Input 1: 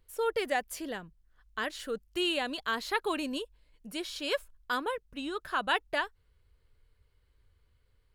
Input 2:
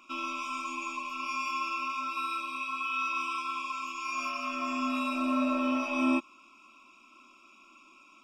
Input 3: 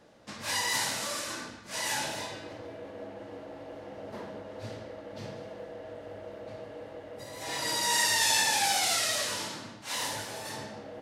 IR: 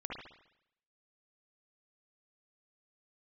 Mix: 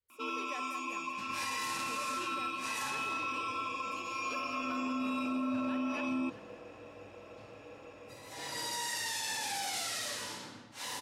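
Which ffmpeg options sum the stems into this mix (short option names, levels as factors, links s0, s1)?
-filter_complex "[0:a]highpass=100,volume=0.112,asplit=3[s0][s1][s2];[s1]volume=0.376[s3];[s2]volume=0.422[s4];[1:a]highpass=150,adelay=100,volume=0.75[s5];[2:a]bandreject=f=640:w=12,adelay=900,volume=0.335,asplit=2[s6][s7];[s7]volume=0.447[s8];[3:a]atrim=start_sample=2205[s9];[s3][s8]amix=inputs=2:normalize=0[s10];[s10][s9]afir=irnorm=-1:irlink=0[s11];[s4]aecho=0:1:193|386|579|772|965|1158|1351|1544:1|0.54|0.292|0.157|0.085|0.0459|0.0248|0.0134[s12];[s0][s5][s6][s11][s12]amix=inputs=5:normalize=0,adynamicequalizer=threshold=0.00501:dfrequency=240:dqfactor=0.94:tfrequency=240:tqfactor=0.94:attack=5:release=100:ratio=0.375:range=2.5:mode=boostabove:tftype=bell,alimiter=level_in=1.5:limit=0.0631:level=0:latency=1:release=23,volume=0.668"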